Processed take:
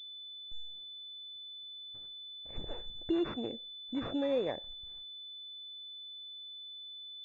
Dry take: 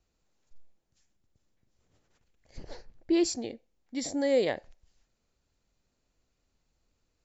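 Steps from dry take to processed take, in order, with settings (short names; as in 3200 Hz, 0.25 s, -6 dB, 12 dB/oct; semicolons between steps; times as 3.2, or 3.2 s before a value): gate with hold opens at -58 dBFS; compressor 2:1, threshold -49 dBFS, peak gain reduction 15.5 dB; pulse-width modulation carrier 3500 Hz; gain +8 dB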